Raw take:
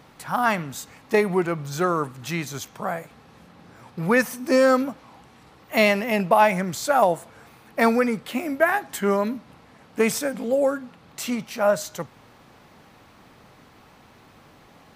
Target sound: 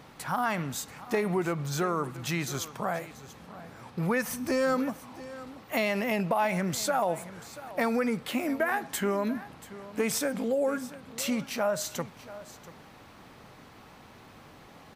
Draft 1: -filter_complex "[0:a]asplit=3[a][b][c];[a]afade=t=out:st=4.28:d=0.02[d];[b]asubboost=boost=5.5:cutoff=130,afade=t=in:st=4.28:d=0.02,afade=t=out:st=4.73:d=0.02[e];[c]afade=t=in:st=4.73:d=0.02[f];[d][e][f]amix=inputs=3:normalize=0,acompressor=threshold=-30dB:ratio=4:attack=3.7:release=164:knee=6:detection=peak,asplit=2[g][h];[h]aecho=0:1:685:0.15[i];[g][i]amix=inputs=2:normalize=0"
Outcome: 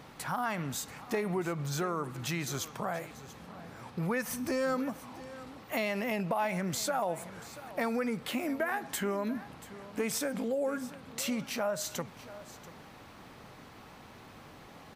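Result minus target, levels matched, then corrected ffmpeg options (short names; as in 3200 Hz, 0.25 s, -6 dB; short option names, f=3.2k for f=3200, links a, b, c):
compressor: peak gain reduction +4.5 dB
-filter_complex "[0:a]asplit=3[a][b][c];[a]afade=t=out:st=4.28:d=0.02[d];[b]asubboost=boost=5.5:cutoff=130,afade=t=in:st=4.28:d=0.02,afade=t=out:st=4.73:d=0.02[e];[c]afade=t=in:st=4.73:d=0.02[f];[d][e][f]amix=inputs=3:normalize=0,acompressor=threshold=-24dB:ratio=4:attack=3.7:release=164:knee=6:detection=peak,asplit=2[g][h];[h]aecho=0:1:685:0.15[i];[g][i]amix=inputs=2:normalize=0"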